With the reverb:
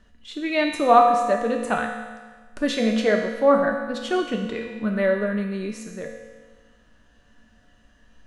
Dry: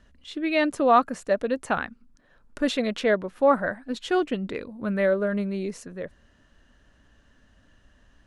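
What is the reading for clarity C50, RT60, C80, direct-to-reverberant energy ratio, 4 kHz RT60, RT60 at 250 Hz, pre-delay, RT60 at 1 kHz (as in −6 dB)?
4.0 dB, 1.4 s, 6.0 dB, 1.0 dB, 1.4 s, 1.4 s, 4 ms, 1.4 s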